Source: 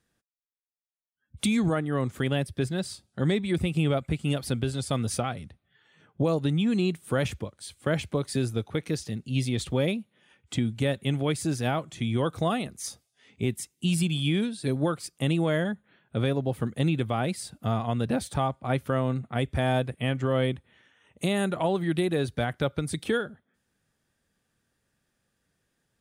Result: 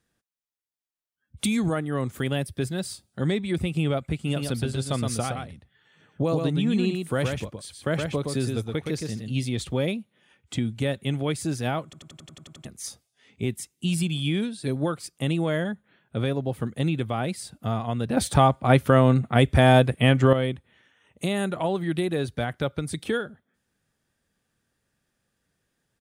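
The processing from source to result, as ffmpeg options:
-filter_complex "[0:a]asettb=1/sr,asplit=3[a][b][c];[a]atrim=end=1.444[d];[b]atrim=start=1.44:end=3.27,asetpts=PTS-STARTPTS,afade=t=in:d=0.004:c=qsin,afade=t=out:st=1.826:d=0.004:c=qsin,highshelf=f=11k:g=11.5[e];[c]atrim=start=3.266[f];[d][e]acrossfade=d=0.004:c1=hsin:c2=qsin[g];[g][f]acrossfade=d=0.004:c1=qsin:c2=hsin,asplit=3[h][i][j];[h]afade=t=out:st=4.26:d=0.02[k];[i]aecho=1:1:118:0.596,afade=t=in:st=4.26:d=0.02,afade=t=out:st=9.42:d=0.02[l];[j]afade=t=in:st=9.42:d=0.02[m];[k][l][m]amix=inputs=3:normalize=0,asplit=12[n][o][p][q][r][s][t][u][v][w][x][y];[n]atrim=end=11.932[z];[o]atrim=start=11.838:end=11.932[aa];[p]atrim=start=11.838:end=11.932[ab];[q]atrim=start=11.838:end=11.932[ac];[r]atrim=start=11.838:end=11.932[ad];[s]atrim=start=11.838:end=11.932[ae];[t]atrim=start=11.838:end=11.932[af];[u]atrim=start=11.838:end=11.932[ag];[v]atrim=start=11.838:end=11.932[ah];[w]atrim=start=12.648:end=18.172[ai];[x]atrim=start=18.168:end=20.332,asetpts=PTS-STARTPTS,volume=9dB[aj];[y]atrim=start=20.328[ak];[z][aa]acrossfade=d=0.004:c1=hsin:c2=hsin[al];[al][ab]acrossfade=d=0.004:c1=hsin:c2=hsin[am];[am][ac]acrossfade=d=0.004:c1=hsin:c2=hsin[an];[an][ad]acrossfade=d=0.004:c1=hsin:c2=hsin[ao];[ao][ae]acrossfade=d=0.004:c1=hsin:c2=hsin[ap];[ap][af]acrossfade=d=0.004:c1=hsin:c2=hsin[aq];[aq][ag]acrossfade=d=0.004:c1=hsin:c2=hsin[ar];[ar][ah]acrossfade=d=0.004:c1=hsin:c2=hsin[as];[as][ai]acrossfade=d=0.004:c1=hsin:c2=hsin[at];[at][aj]acrossfade=d=0.004:c1=hsin:c2=hsin[au];[au][ak]acrossfade=d=0.004:c1=hsin:c2=hsin"

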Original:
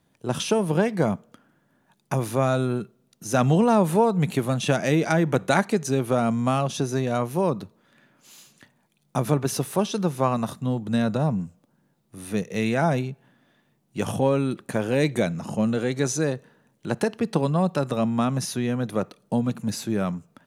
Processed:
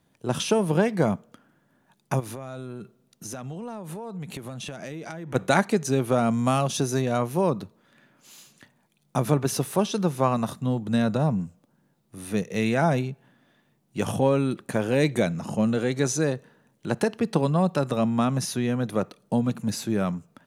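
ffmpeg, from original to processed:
-filter_complex "[0:a]asplit=3[a][b][c];[a]afade=t=out:st=2.19:d=0.02[d];[b]acompressor=threshold=-32dB:ratio=12:attack=3.2:release=140:knee=1:detection=peak,afade=t=in:st=2.19:d=0.02,afade=t=out:st=5.34:d=0.02[e];[c]afade=t=in:st=5.34:d=0.02[f];[d][e][f]amix=inputs=3:normalize=0,asettb=1/sr,asplit=3[g][h][i];[g]atrim=end=6.334[j];[h]atrim=start=6.33:end=7.02,asetpts=PTS-STARTPTS,afade=t=in:d=0.004:c=qsin,afade=t=out:st=0.686:d=0.004:c=qsin,highshelf=f=5.8k:g=7.5[k];[i]atrim=start=7.016[l];[j][k]acrossfade=d=0.004:c1=hsin:c2=qsin[m];[m][l]acrossfade=d=0.004:c1=qsin:c2=hsin"

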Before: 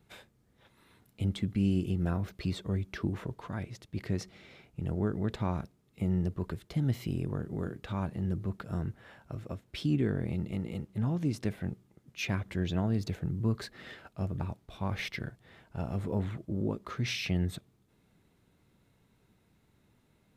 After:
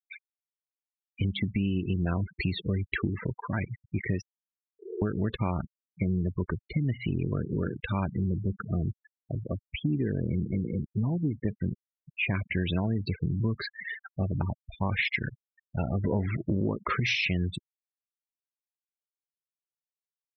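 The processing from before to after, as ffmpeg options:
-filter_complex "[0:a]asettb=1/sr,asplit=3[a][b][c];[a]atrim=end=4.214[d];[b]atrim=start=4.21:end=5.02,asetpts=PTS-STARTPTS,afade=t=in:d=0.004:c=qsin,afade=t=out:st=0.806:d=0.004:c=qsin,asuperpass=centerf=410:order=12:qfactor=3.2[e];[c]atrim=start=5.016[f];[d][e]acrossfade=d=0.004:c1=hsin:c2=qsin[g];[g][f]acrossfade=d=0.004:c1=qsin:c2=hsin,asettb=1/sr,asplit=3[h][i][j];[h]atrim=end=8.294[k];[i]atrim=start=8.29:end=12.35,asetpts=PTS-STARTPTS,afade=t=in:d=0.004:c=qsin,afade=t=out:st=4.056:d=0.004:c=qsin,lowpass=f=1.3k:p=1[l];[j]atrim=start=12.346[m];[k][l]acrossfade=d=0.004:c1=hsin:c2=qsin[n];[n][m]acrossfade=d=0.004:c1=qsin:c2=hsin,asettb=1/sr,asplit=3[o][p][q];[o]atrim=end=16.044[r];[p]atrim=start=16.04:end=17,asetpts=PTS-STARTPTS,afade=t=in:d=0.004:c=qsin,afade=t=out:st=0.956:d=0.004:c=qsin,acontrast=32[s];[q]atrim=start=16.996[t];[r][s]acrossfade=d=0.004:c1=hsin:c2=qsin[u];[u][t]acrossfade=d=0.004:c1=qsin:c2=hsin,equalizer=f=2.3k:w=1.2:g=9,afftfilt=real='re*gte(hypot(re,im),0.0224)':imag='im*gte(hypot(re,im),0.0224)':win_size=1024:overlap=0.75,acompressor=threshold=-32dB:ratio=6,volume=7.5dB"

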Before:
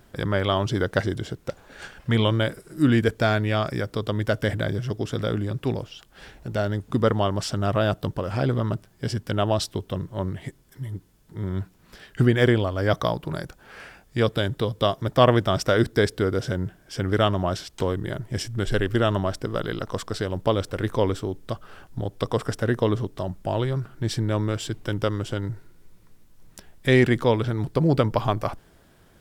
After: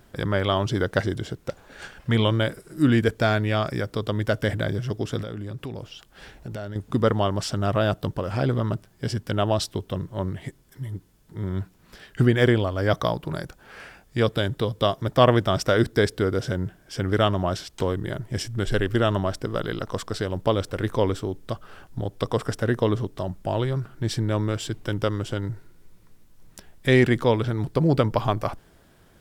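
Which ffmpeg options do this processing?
-filter_complex "[0:a]asettb=1/sr,asplit=3[a][b][c];[a]atrim=end=5.224[d];[b]atrim=start=5.22:end=6.76,asetpts=PTS-STARTPTS,afade=t=in:d=0.004:c=qsin,afade=t=out:st=1.536:d=0.004:c=qsin,acompressor=threshold=-30dB:ratio=6:attack=3.2:release=140:knee=1:detection=peak[e];[c]atrim=start=6.756[f];[d][e]acrossfade=d=0.004:c1=hsin:c2=qsin[g];[g][f]acrossfade=d=0.004:c1=qsin:c2=hsin"

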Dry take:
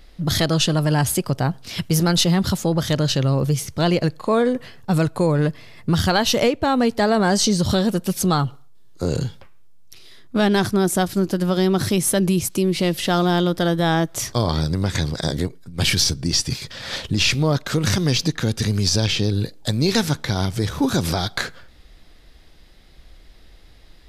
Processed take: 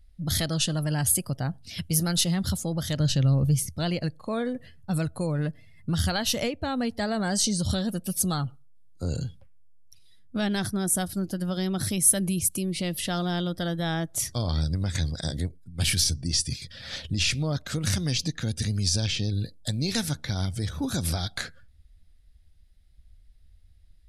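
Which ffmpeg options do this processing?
-filter_complex "[0:a]asettb=1/sr,asplit=3[a][b][c];[a]atrim=end=3.004[d];[b]atrim=start=3:end=3.69,asetpts=PTS-STARTPTS,afade=t=in:d=0.004:c=qsin,afade=t=out:st=0.686:d=0.004:c=qsin,lowshelf=f=190:g=9[e];[c]atrim=start=3.686[f];[d][e]acrossfade=d=0.004:c1=hsin:c2=qsin[g];[g][f]acrossfade=d=0.004:c1=qsin:c2=hsin,equalizer=f=81:t=o:w=0.37:g=8,afftdn=nr=15:nf=-40,equalizer=f=400:t=o:w=0.67:g=-7,equalizer=f=1k:t=o:w=0.67:g=-7,equalizer=f=10k:t=o:w=0.67:g=12,volume=-7.5dB"

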